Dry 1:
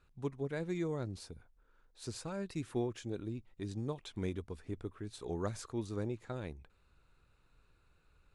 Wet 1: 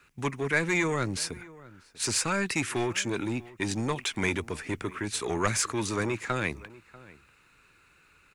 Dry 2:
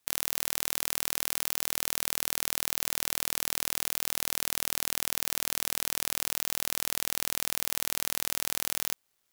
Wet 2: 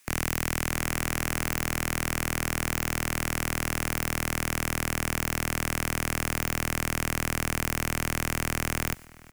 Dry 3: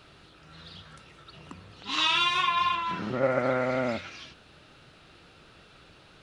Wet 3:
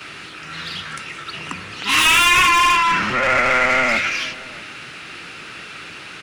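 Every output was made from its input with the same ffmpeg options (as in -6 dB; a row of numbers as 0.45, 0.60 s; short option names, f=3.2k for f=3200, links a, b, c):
-filter_complex "[0:a]asplit=2[a][b];[b]highpass=f=720:p=1,volume=31dB,asoftclip=type=tanh:threshold=-1dB[c];[a][c]amix=inputs=2:normalize=0,lowpass=f=2k:p=1,volume=-6dB,acrossover=split=110|430|3200[d][e][f][g];[e]asoftclip=type=tanh:threshold=-27.5dB[h];[f]bandpass=f=1.9k:t=q:w=1.2:csg=0[i];[d][h][i][g]amix=inputs=4:normalize=0,agate=range=-6dB:threshold=-44dB:ratio=16:detection=peak,aexciter=amount=1.1:drive=8.2:freq=2.1k,asplit=2[j][k];[k]adelay=641.4,volume=-20dB,highshelf=f=4k:g=-14.4[l];[j][l]amix=inputs=2:normalize=0"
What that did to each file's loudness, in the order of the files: +11.5, 0.0, +11.5 LU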